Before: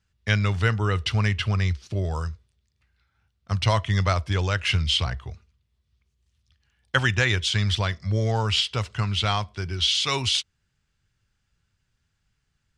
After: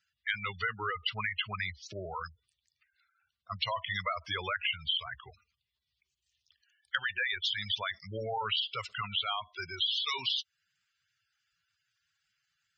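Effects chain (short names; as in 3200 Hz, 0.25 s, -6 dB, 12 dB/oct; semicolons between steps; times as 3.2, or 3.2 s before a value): HPF 1500 Hz 6 dB/oct; spectral gate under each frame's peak -10 dB strong; compressor 5:1, threshold -33 dBFS, peak gain reduction 11.5 dB; gain +3.5 dB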